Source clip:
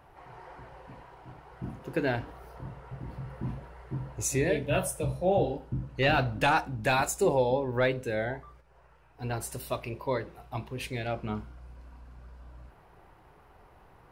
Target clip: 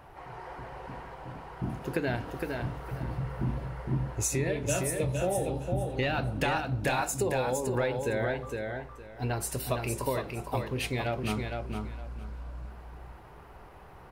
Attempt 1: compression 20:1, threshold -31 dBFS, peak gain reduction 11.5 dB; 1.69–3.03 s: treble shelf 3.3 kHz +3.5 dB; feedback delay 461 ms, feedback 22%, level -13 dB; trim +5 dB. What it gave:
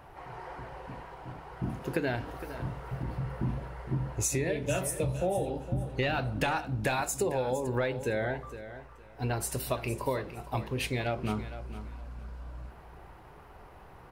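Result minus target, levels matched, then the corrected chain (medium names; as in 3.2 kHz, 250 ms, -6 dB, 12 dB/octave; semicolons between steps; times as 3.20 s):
echo-to-direct -8.5 dB
compression 20:1, threshold -31 dBFS, peak gain reduction 11.5 dB; 1.69–3.03 s: treble shelf 3.3 kHz +3.5 dB; feedback delay 461 ms, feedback 22%, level -4.5 dB; trim +5 dB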